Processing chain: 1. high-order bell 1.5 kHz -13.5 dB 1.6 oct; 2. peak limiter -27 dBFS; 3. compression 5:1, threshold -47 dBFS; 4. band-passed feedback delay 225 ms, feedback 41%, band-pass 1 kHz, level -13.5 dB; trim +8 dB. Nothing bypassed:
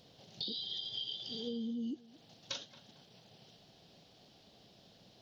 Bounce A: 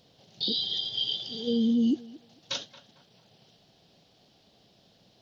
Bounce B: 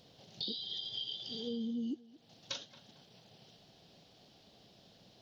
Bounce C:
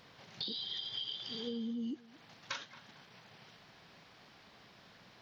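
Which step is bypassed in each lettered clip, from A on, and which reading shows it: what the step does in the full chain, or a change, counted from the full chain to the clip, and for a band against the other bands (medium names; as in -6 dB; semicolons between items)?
3, momentary loudness spread change -11 LU; 2, mean gain reduction 2.0 dB; 1, 2 kHz band +9.0 dB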